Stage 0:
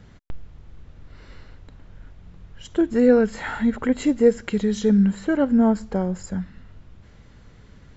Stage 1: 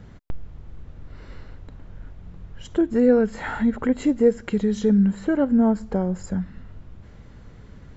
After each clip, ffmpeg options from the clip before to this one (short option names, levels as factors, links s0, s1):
-filter_complex "[0:a]highshelf=f=6300:g=5.5,asplit=2[s0][s1];[s1]acompressor=threshold=0.0398:ratio=6,volume=1.12[s2];[s0][s2]amix=inputs=2:normalize=0,highshelf=f=2100:g=-9.5,volume=0.75"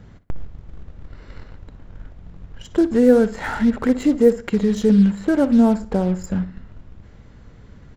-filter_complex "[0:a]asplit=2[s0][s1];[s1]acrusher=bits=4:mix=0:aa=0.5,volume=0.473[s2];[s0][s2]amix=inputs=2:normalize=0,asplit=2[s3][s4];[s4]adelay=60,lowpass=f=3500:p=1,volume=0.188,asplit=2[s5][s6];[s6]adelay=60,lowpass=f=3500:p=1,volume=0.33,asplit=2[s7][s8];[s8]adelay=60,lowpass=f=3500:p=1,volume=0.33[s9];[s3][s5][s7][s9]amix=inputs=4:normalize=0"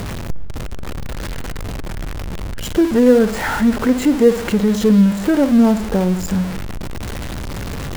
-af "aeval=exprs='val(0)+0.5*0.0841*sgn(val(0))':c=same,volume=1.12"